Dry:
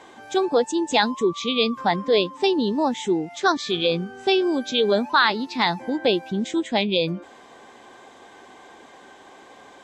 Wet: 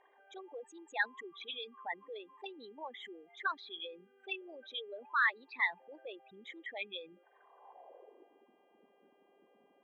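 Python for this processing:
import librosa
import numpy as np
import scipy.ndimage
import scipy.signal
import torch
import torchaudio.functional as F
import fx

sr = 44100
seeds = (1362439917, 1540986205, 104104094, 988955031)

y = fx.envelope_sharpen(x, sr, power=3.0)
y = fx.filter_sweep_bandpass(y, sr, from_hz=1900.0, to_hz=200.0, start_s=7.31, end_s=8.46, q=3.8)
y = fx.dmg_buzz(y, sr, base_hz=400.0, harmonics=8, level_db=-71.0, tilt_db=-4, odd_only=False)
y = F.gain(torch.from_numpy(y), -4.0).numpy()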